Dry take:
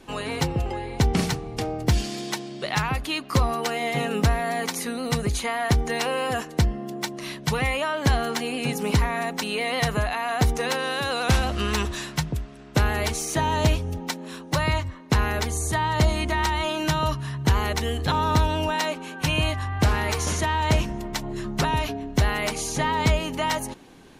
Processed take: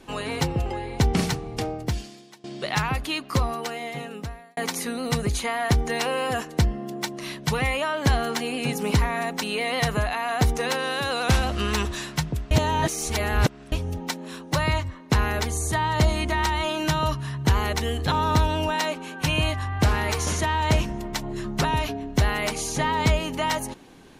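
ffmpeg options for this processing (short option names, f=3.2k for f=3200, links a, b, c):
-filter_complex "[0:a]asplit=5[a][b][c][d][e];[a]atrim=end=2.44,asetpts=PTS-STARTPTS,afade=t=out:st=1.65:d=0.79:c=qua:silence=0.0841395[f];[b]atrim=start=2.44:end=4.57,asetpts=PTS-STARTPTS,afade=t=in:d=0.004:c=hsin:silence=0.0841395,afade=t=out:st=0.63:d=1.5[g];[c]atrim=start=4.57:end=12.512,asetpts=PTS-STARTPTS,afade=t=in:d=0.004:c=hsin[h];[d]atrim=start=12.508:end=13.722,asetpts=PTS-STARTPTS,areverse[i];[e]atrim=start=13.718[j];[f][g][h]concat=n=3:v=0:a=1[k];[k][i]acrossfade=d=0.004:c1=hsin:c2=hsin[l];[l][j]acrossfade=d=0.004:c1=hsin:c2=hsin"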